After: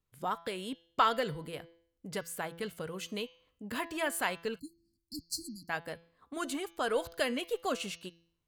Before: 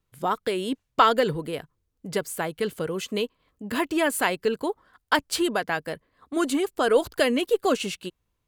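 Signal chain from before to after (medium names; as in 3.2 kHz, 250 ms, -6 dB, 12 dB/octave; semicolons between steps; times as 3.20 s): de-hum 167.9 Hz, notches 39; dynamic bell 350 Hz, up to -7 dB, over -37 dBFS, Q 1.4; spectral selection erased 4.59–5.69 s, 330–4100 Hz; trim -7.5 dB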